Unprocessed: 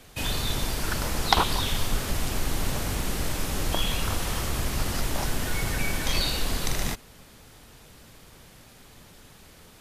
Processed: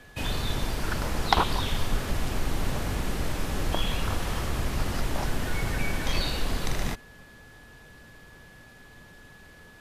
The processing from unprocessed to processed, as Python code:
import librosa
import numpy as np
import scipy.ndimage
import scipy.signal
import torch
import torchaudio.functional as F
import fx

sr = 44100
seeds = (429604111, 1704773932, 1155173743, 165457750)

y = x + 10.0 ** (-51.0 / 20.0) * np.sin(2.0 * np.pi * 1700.0 * np.arange(len(x)) / sr)
y = fx.high_shelf(y, sr, hz=4100.0, db=-9.0)